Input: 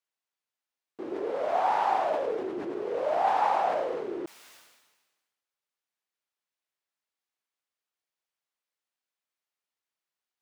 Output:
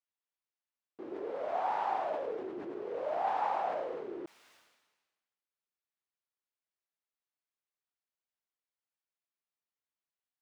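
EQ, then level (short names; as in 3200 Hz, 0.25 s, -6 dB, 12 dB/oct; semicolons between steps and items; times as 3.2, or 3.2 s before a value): high shelf 5900 Hz -10 dB; -7.0 dB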